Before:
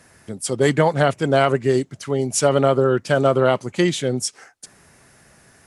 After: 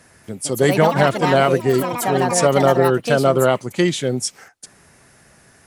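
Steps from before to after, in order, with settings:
delay with pitch and tempo change per echo 237 ms, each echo +5 semitones, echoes 3, each echo −6 dB
level +1 dB

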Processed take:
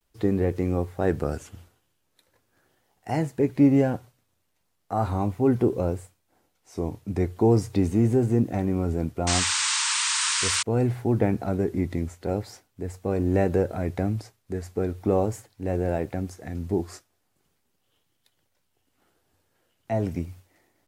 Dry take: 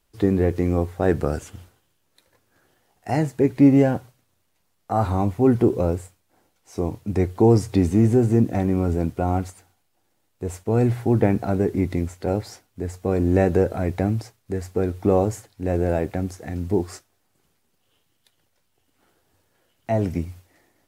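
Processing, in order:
sound drawn into the spectrogram noise, 0:09.27–0:10.63, 860–9,200 Hz −21 dBFS
pitch vibrato 0.4 Hz 42 cents
level −4 dB

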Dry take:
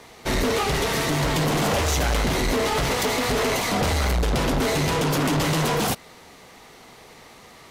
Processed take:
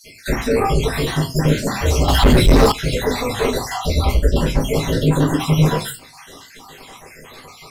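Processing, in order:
time-frequency cells dropped at random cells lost 63%
convolution reverb RT60 0.30 s, pre-delay 4 ms, DRR −6.5 dB
0:02.08–0:02.72: leveller curve on the samples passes 3
one half of a high-frequency compander encoder only
level −5 dB

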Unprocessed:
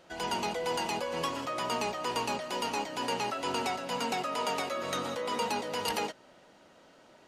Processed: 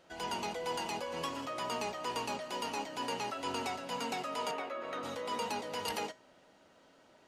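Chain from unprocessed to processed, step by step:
0:04.51–0:05.03: three-way crossover with the lows and the highs turned down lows −16 dB, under 230 Hz, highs −17 dB, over 2,900 Hz
tuned comb filter 90 Hz, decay 0.28 s, harmonics odd, mix 50%

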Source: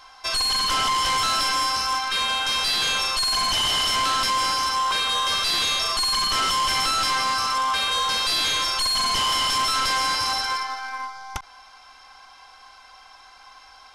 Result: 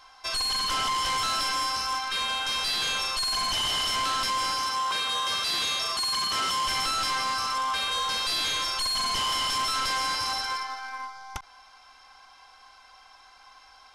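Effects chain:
0:04.62–0:06.67: high-pass filter 83 Hz 12 dB per octave
level −5 dB

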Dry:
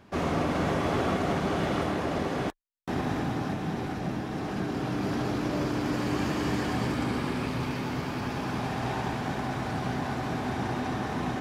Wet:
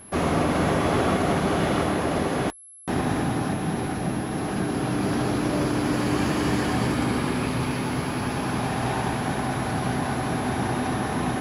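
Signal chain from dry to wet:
steady tone 11,000 Hz −49 dBFS
level +5 dB

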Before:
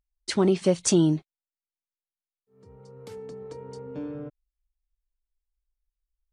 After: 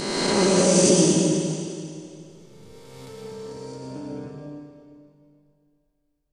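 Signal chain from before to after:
peak hold with a rise ahead of every peak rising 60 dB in 2.29 s
comb and all-pass reverb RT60 2.5 s, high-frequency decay 0.95×, pre-delay 70 ms, DRR −2 dB
0:03.09–0:03.90: surface crackle 150 per second −54 dBFS
level −3 dB

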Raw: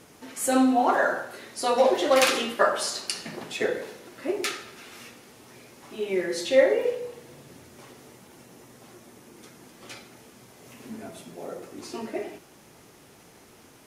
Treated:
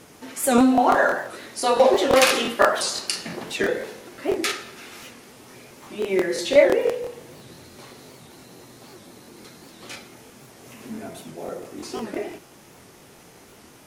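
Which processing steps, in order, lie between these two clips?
0:07.35–0:09.89: parametric band 4,100 Hz +10 dB 0.21 octaves
regular buffer underruns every 0.17 s, samples 1,024, repeat, from 0:00.39
wow of a warped record 78 rpm, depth 160 cents
level +4 dB

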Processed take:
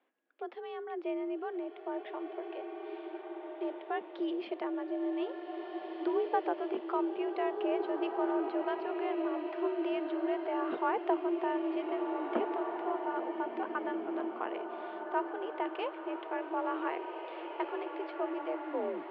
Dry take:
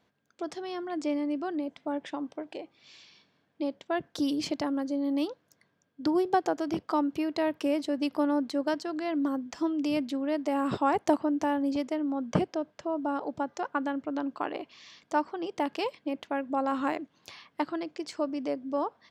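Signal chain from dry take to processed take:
turntable brake at the end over 0.43 s
single-sideband voice off tune +52 Hz 220–3,100 Hz
slow-attack reverb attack 1,860 ms, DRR 3.5 dB
level −5.5 dB

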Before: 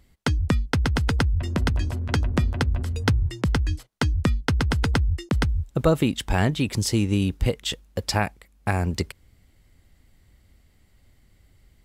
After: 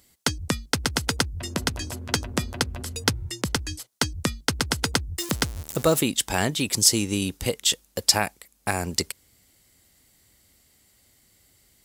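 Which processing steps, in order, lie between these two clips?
0:05.18–0:06.00: converter with a step at zero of −33 dBFS
high-pass filter 160 Hz 6 dB per octave
bass and treble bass −3 dB, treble +13 dB

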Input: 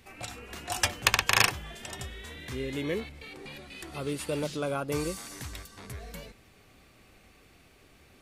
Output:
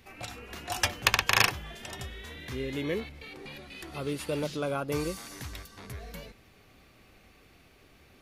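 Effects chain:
parametric band 8,200 Hz −6.5 dB 0.43 octaves

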